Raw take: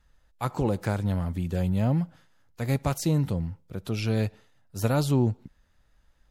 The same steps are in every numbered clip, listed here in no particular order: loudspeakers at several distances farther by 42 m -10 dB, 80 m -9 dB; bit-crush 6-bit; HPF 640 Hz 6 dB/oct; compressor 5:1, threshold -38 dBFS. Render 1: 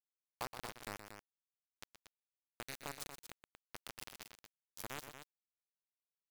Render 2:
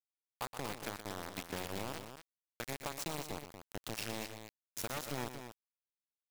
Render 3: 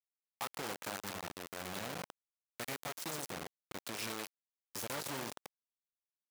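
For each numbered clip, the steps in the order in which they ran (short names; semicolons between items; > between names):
compressor > HPF > bit-crush > loudspeakers at several distances; HPF > compressor > bit-crush > loudspeakers at several distances; compressor > loudspeakers at several distances > bit-crush > HPF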